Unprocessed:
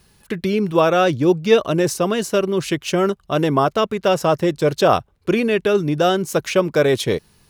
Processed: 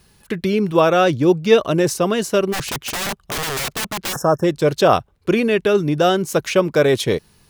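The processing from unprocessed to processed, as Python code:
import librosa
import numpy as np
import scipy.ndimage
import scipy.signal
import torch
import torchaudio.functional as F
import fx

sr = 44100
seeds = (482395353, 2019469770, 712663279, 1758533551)

y = fx.overflow_wrap(x, sr, gain_db=19.5, at=(2.52, 4.19), fade=0.02)
y = fx.spec_box(y, sr, start_s=4.13, length_s=0.31, low_hz=1800.0, high_hz=5200.0, gain_db=-26)
y = F.gain(torch.from_numpy(y), 1.0).numpy()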